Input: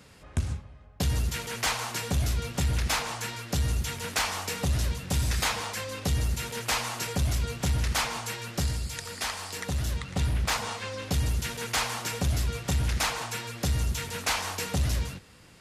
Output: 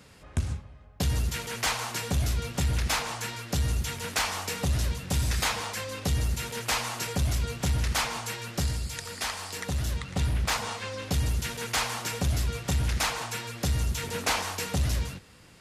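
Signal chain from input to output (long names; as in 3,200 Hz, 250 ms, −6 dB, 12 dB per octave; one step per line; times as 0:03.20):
0:14.03–0:14.43: parametric band 340 Hz +6 dB 2.1 octaves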